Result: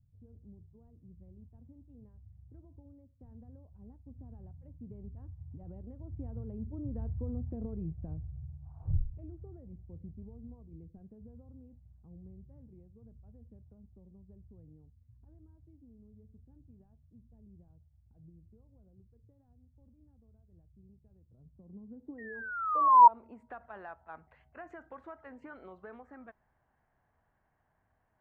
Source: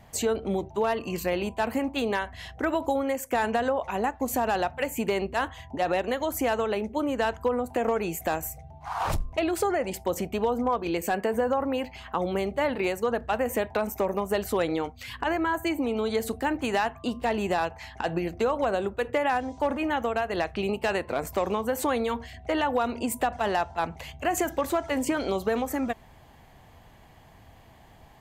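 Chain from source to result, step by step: Doppler pass-by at 7.24, 12 m/s, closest 8.1 m; painted sound fall, 22.18–23.08, 930–1900 Hz -25 dBFS; low-pass sweep 110 Hz -> 1500 Hz, 21.24–23.52; gain +5 dB

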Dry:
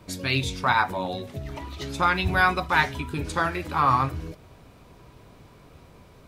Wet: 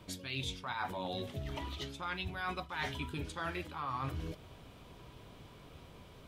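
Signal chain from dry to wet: bell 3200 Hz +8.5 dB 0.39 oct; reverse; compressor 12:1, threshold -31 dBFS, peak gain reduction 17 dB; reverse; gain -4 dB

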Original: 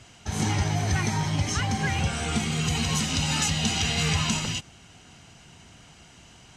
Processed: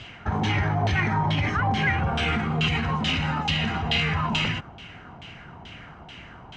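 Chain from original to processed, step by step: limiter -23.5 dBFS, peak gain reduction 10.5 dB; LFO low-pass saw down 2.3 Hz 820–3400 Hz; gain +7 dB

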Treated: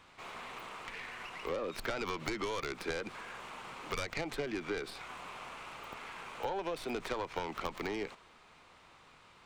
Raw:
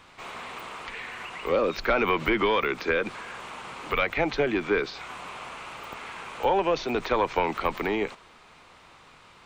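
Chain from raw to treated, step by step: tracing distortion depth 0.16 ms; compressor 6:1, threshold -26 dBFS, peak gain reduction 8 dB; gain -7 dB

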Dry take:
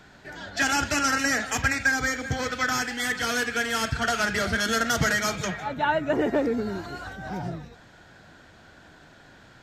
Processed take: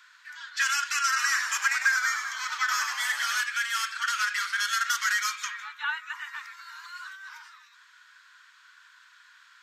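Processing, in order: steep high-pass 1000 Hz 96 dB/oct; 1.06–3.41 frequency-shifting echo 0.1 s, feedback 55%, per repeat -100 Hz, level -7 dB; gain -1 dB

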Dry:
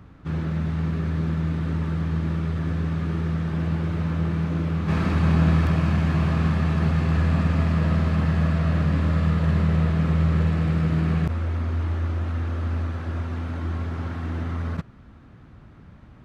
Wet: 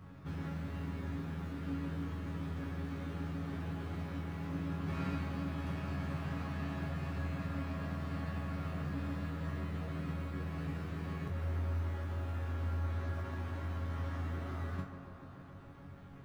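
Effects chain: G.711 law mismatch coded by mu; compressor, threshold -23 dBFS, peak gain reduction 9 dB; resonator bank F#2 fifth, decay 0.3 s; on a send: tape echo 0.143 s, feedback 90%, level -8 dB, low-pass 2400 Hz; on the sum: gain +2 dB

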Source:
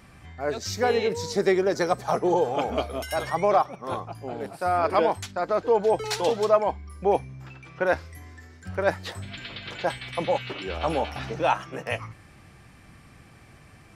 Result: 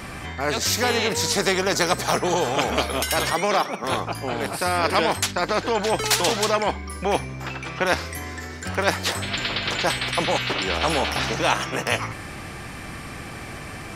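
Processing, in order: 3.33–3.84 Chebyshev high-pass 190 Hz, order 4; spectral compressor 2:1; gain +5 dB

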